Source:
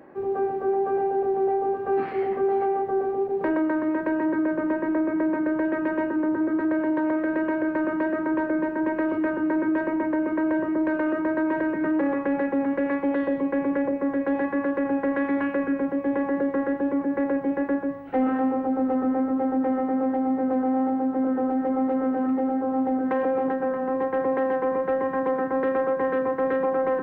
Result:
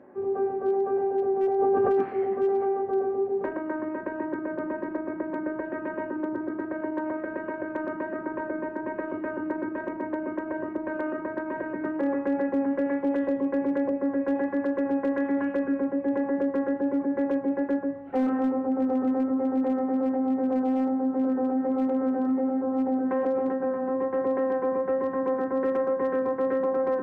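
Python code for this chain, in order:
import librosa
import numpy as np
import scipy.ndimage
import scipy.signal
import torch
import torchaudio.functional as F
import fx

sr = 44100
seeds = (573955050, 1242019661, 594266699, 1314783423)

y = fx.lowpass(x, sr, hz=1100.0, slope=6)
y = fx.low_shelf(y, sr, hz=67.0, db=-9.5)
y = fx.notch_comb(y, sr, f0_hz=160.0)
y = np.clip(10.0 ** (19.0 / 20.0) * y, -1.0, 1.0) / 10.0 ** (19.0 / 20.0)
y = fx.env_flatten(y, sr, amount_pct=100, at=(1.58, 2.01), fade=0.02)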